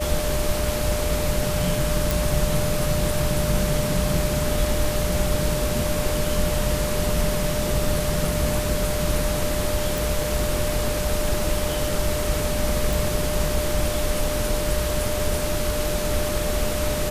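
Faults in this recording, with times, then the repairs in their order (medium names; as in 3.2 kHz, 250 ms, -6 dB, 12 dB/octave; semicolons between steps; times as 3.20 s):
whine 600 Hz -27 dBFS
2.11 s: pop
9.98 s: pop
12.93 s: pop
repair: de-click; band-stop 600 Hz, Q 30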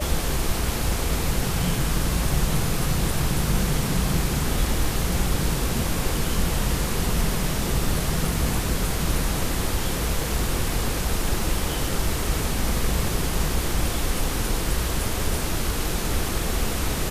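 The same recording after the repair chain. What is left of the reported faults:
nothing left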